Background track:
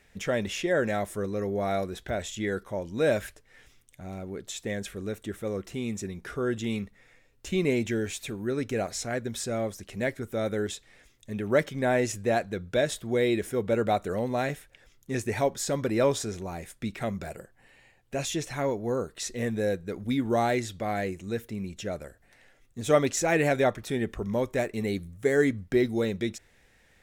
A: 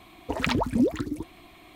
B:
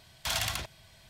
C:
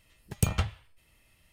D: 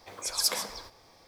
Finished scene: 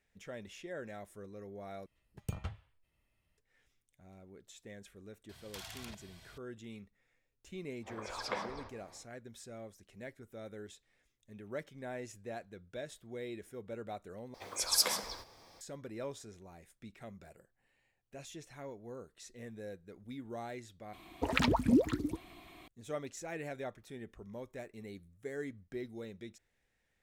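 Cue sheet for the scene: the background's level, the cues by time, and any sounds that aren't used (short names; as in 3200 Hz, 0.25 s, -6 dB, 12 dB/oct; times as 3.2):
background track -18 dB
1.86 replace with C -12.5 dB + high shelf 2400 Hz -8.5 dB
5.29 add B -1.5 dB + compressor 12:1, threshold -42 dBFS
7.8 add D -0.5 dB, fades 0.10 s + LPF 2000 Hz
14.34 replace with D -1.5 dB
20.93 replace with A -4 dB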